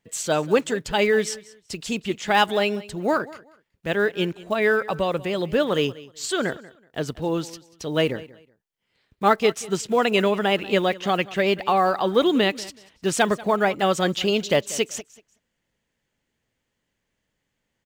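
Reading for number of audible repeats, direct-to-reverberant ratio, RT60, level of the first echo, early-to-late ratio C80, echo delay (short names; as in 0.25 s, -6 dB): 2, none, none, -19.5 dB, none, 0.188 s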